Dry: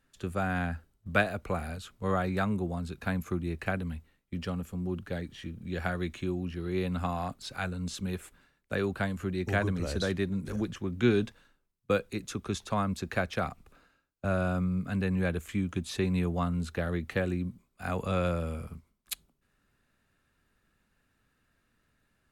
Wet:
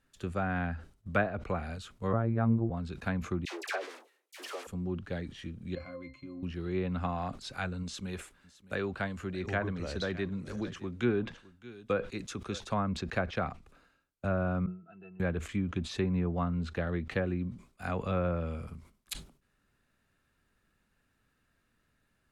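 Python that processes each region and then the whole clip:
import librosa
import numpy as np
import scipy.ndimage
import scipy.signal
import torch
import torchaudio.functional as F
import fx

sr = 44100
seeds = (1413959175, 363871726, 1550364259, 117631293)

y = fx.chain(x, sr, fx.tilt_eq(slope=-2.5),
    fx.robotise(hz=114.0), at=(2.13, 2.7))
y = fx.chain(y, sr, fx.block_float(bits=3),
    fx.steep_highpass(hz=350.0, slope=48),
    fx.dispersion(late='lows', ms=74.0, hz=1200.0), at=(3.45, 4.67))
y = fx.chain(y, sr, fx.tilt_eq(slope=3.0),
    fx.leveller(passes=2),
    fx.octave_resonator(note='C', decay_s=0.18), at=(5.75, 6.43))
y = fx.chain(y, sr, fx.low_shelf(hz=380.0, db=-4.5),
    fx.echo_single(ms=612, db=-19.5), at=(7.83, 12.6))
y = fx.chain(y, sr, fx.highpass(hz=440.0, slope=12),
    fx.high_shelf(hz=2900.0, db=-11.0),
    fx.octave_resonator(note='E', decay_s=0.1), at=(14.66, 15.2))
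y = fx.env_lowpass_down(y, sr, base_hz=1600.0, full_db=-24.0)
y = fx.sustainer(y, sr, db_per_s=140.0)
y = F.gain(torch.from_numpy(y), -1.5).numpy()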